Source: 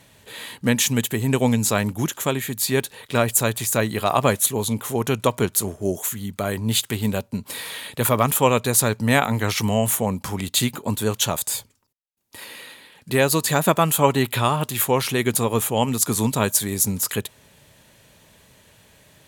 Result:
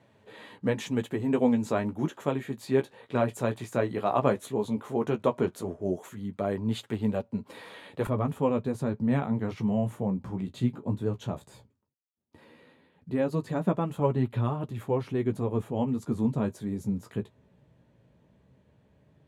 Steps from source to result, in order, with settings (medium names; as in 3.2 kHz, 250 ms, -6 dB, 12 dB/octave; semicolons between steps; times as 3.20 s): flange 0.14 Hz, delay 8.7 ms, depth 8.1 ms, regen -25%; band-pass filter 390 Hz, Q 0.53, from 8.07 s 160 Hz